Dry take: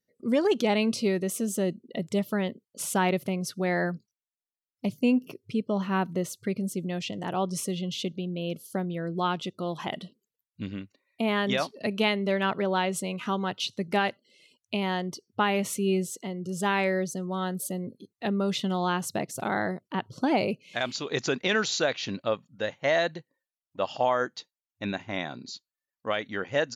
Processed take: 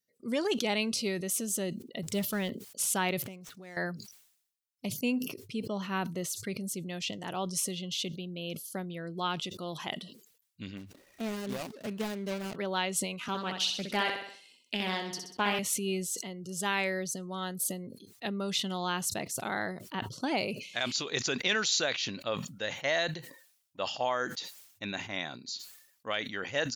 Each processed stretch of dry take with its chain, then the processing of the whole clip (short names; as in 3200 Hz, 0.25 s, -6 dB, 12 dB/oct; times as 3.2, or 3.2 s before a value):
2.03–2.5 G.711 law mismatch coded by mu + low shelf 140 Hz +6 dB
3.22–3.77 median filter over 9 samples + compressor 4:1, threshold -40 dBFS
10.77–12.56 median filter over 41 samples + upward compressor, threshold -35 dBFS
13.28–15.59 HPF 140 Hz 24 dB/oct + flutter echo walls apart 10.9 m, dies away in 0.56 s + Doppler distortion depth 0.3 ms
whole clip: high shelf 2000 Hz +11.5 dB; sustainer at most 81 dB/s; gain -8 dB